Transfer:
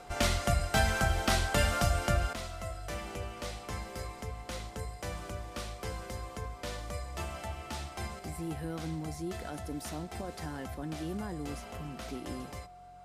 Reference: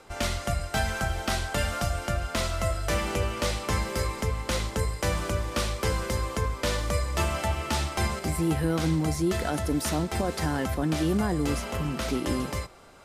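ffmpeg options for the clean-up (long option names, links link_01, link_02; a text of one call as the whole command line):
ffmpeg -i in.wav -af "bandreject=frequency=45.2:width_type=h:width=4,bandreject=frequency=90.4:width_type=h:width=4,bandreject=frequency=135.6:width_type=h:width=4,bandreject=frequency=180.8:width_type=h:width=4,bandreject=frequency=720:width=30,asetnsamples=nb_out_samples=441:pad=0,asendcmd='2.33 volume volume 12dB',volume=0dB" out.wav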